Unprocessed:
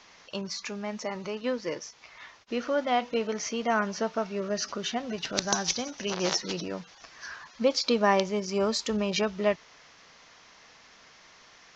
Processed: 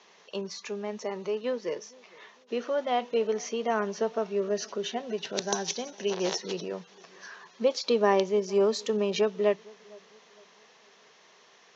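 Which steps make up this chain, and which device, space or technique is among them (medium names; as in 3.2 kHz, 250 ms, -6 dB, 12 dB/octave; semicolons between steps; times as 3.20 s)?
4.54–6.43 s: band-stop 1.2 kHz, Q 9.8; television speaker (cabinet simulation 170–7100 Hz, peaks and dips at 290 Hz -8 dB, 410 Hz +9 dB, 1.4 kHz -5 dB, 2.2 kHz -4 dB, 4.9 kHz -6 dB); filtered feedback delay 457 ms, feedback 39%, low-pass 1.2 kHz, level -24 dB; trim -1.5 dB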